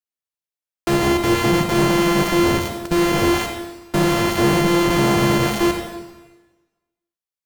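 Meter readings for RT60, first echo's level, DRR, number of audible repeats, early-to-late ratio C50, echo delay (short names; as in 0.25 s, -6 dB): 1.2 s, none, 3.5 dB, none, 4.0 dB, none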